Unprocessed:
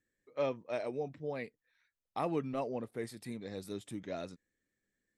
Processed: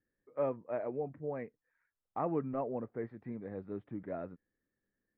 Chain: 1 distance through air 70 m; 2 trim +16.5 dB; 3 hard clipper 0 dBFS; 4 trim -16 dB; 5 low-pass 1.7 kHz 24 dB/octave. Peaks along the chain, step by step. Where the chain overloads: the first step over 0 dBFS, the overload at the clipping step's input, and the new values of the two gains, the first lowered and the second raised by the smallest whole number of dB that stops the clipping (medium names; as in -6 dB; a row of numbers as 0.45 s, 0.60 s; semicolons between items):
-21.5 dBFS, -5.0 dBFS, -5.0 dBFS, -21.0 dBFS, -21.5 dBFS; nothing clips